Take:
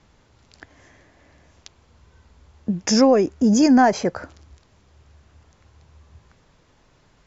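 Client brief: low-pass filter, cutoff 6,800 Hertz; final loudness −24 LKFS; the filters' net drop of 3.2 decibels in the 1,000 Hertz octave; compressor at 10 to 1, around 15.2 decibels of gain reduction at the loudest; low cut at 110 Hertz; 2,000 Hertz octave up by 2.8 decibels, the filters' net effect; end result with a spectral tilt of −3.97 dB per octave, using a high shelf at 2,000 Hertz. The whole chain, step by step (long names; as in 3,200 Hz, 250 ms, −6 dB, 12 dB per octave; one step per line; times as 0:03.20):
high-pass filter 110 Hz
low-pass filter 6,800 Hz
parametric band 1,000 Hz −6.5 dB
high-shelf EQ 2,000 Hz +3 dB
parametric band 2,000 Hz +5 dB
downward compressor 10 to 1, threshold −27 dBFS
level +9 dB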